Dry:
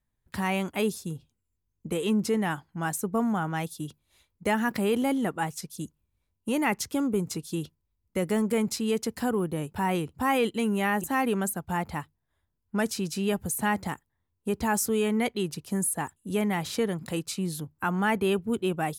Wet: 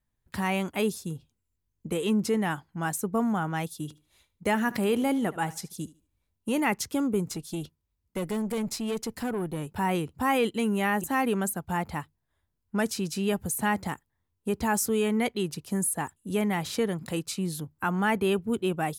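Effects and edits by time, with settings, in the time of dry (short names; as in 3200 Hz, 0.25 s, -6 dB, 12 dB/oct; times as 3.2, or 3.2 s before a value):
3.78–6.6 thinning echo 74 ms, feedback 27%, high-pass 170 Hz, level -18.5 dB
7.29–9.67 tube stage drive 25 dB, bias 0.25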